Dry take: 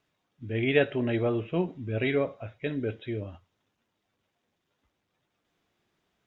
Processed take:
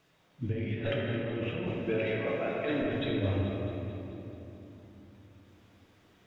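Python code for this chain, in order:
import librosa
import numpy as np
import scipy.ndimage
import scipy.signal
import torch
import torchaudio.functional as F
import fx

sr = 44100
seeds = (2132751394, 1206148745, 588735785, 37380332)

y = fx.diode_clip(x, sr, knee_db=-13.5)
y = fx.highpass(y, sr, hz=380.0, slope=12, at=(1.67, 2.82))
y = fx.over_compress(y, sr, threshold_db=-38.0, ratio=-1.0)
y = fx.echo_feedback(y, sr, ms=218, feedback_pct=57, wet_db=-10)
y = fx.room_shoebox(y, sr, seeds[0], volume_m3=160.0, walls='hard', distance_m=0.62)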